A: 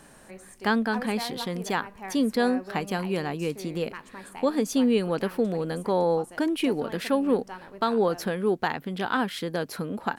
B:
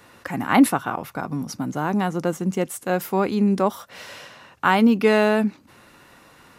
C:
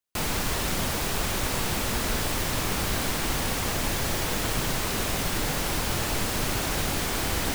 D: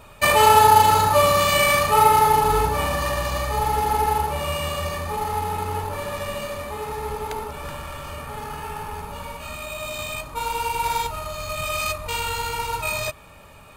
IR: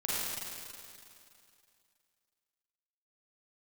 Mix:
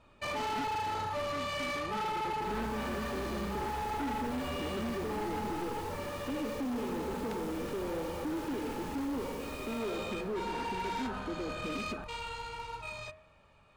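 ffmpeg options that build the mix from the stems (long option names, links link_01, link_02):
-filter_complex "[0:a]lowpass=2700,adelay=1850,volume=-2dB,asplit=2[link_01][link_02];[link_02]volume=-19dB[link_03];[1:a]volume=-11.5dB[link_04];[2:a]adelay=2250,volume=-15.5dB,asplit=2[link_05][link_06];[link_06]volume=-13dB[link_07];[3:a]lowpass=5000,bandreject=frequency=89.48:width_type=h:width=4,bandreject=frequency=178.96:width_type=h:width=4,bandreject=frequency=268.44:width_type=h:width=4,bandreject=frequency=357.92:width_type=h:width=4,bandreject=frequency=447.4:width_type=h:width=4,bandreject=frequency=536.88:width_type=h:width=4,bandreject=frequency=626.36:width_type=h:width=4,bandreject=frequency=715.84:width_type=h:width=4,bandreject=frequency=805.32:width_type=h:width=4,bandreject=frequency=894.8:width_type=h:width=4,bandreject=frequency=984.28:width_type=h:width=4,bandreject=frequency=1073.76:width_type=h:width=4,bandreject=frequency=1163.24:width_type=h:width=4,bandreject=frequency=1252.72:width_type=h:width=4,bandreject=frequency=1342.2:width_type=h:width=4,bandreject=frequency=1431.68:width_type=h:width=4,bandreject=frequency=1521.16:width_type=h:width=4,bandreject=frequency=1610.64:width_type=h:width=4,bandreject=frequency=1700.12:width_type=h:width=4,bandreject=frequency=1789.6:width_type=h:width=4,bandreject=frequency=1879.08:width_type=h:width=4,bandreject=frequency=1968.56:width_type=h:width=4,bandreject=frequency=2058.04:width_type=h:width=4,bandreject=frequency=2147.52:width_type=h:width=4,bandreject=frequency=2237:width_type=h:width=4,bandreject=frequency=2326.48:width_type=h:width=4,bandreject=frequency=2415.96:width_type=h:width=4,bandreject=frequency=2505.44:width_type=h:width=4,bandreject=frequency=2594.92:width_type=h:width=4,bandreject=frequency=2684.4:width_type=h:width=4,bandreject=frequency=2773.88:width_type=h:width=4,bandreject=frequency=2863.36:width_type=h:width=4,dynaudnorm=framelen=240:gausssize=17:maxgain=5.5dB,volume=-15.5dB[link_08];[link_01][link_04][link_05]amix=inputs=3:normalize=0,asuperpass=centerf=310:order=4:qfactor=1.5,acompressor=threshold=-32dB:ratio=6,volume=0dB[link_09];[4:a]atrim=start_sample=2205[link_10];[link_03][link_07]amix=inputs=2:normalize=0[link_11];[link_11][link_10]afir=irnorm=-1:irlink=0[link_12];[link_08][link_09][link_12]amix=inputs=3:normalize=0,asoftclip=type=hard:threshold=-32dB"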